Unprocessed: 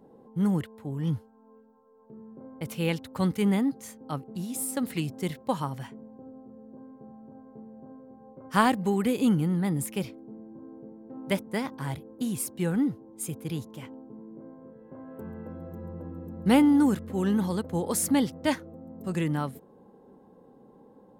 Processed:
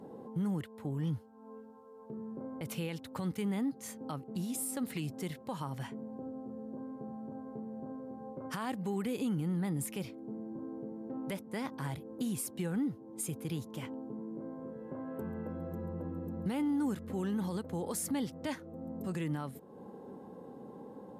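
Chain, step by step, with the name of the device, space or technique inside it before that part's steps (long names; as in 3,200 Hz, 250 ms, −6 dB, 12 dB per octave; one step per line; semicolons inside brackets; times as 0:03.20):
podcast mastering chain (high-pass filter 74 Hz; downward compressor 2 to 1, threshold −47 dBFS, peak gain reduction 17 dB; brickwall limiter −33 dBFS, peak gain reduction 10.5 dB; level +6.5 dB; MP3 112 kbit/s 32,000 Hz)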